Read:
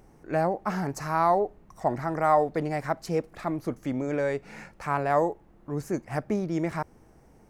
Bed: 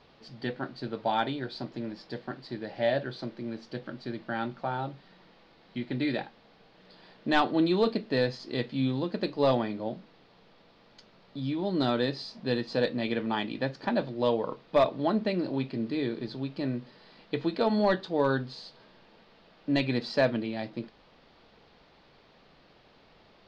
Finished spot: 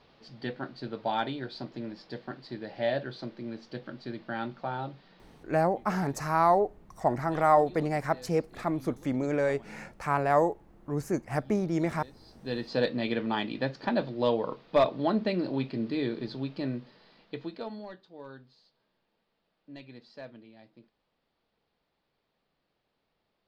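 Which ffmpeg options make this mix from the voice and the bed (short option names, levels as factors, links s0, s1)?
-filter_complex "[0:a]adelay=5200,volume=1[s0];[1:a]volume=10.6,afade=t=out:st=5.32:d=0.23:silence=0.0944061,afade=t=in:st=12.22:d=0.56:silence=0.0749894,afade=t=out:st=16.43:d=1.45:silence=0.1[s1];[s0][s1]amix=inputs=2:normalize=0"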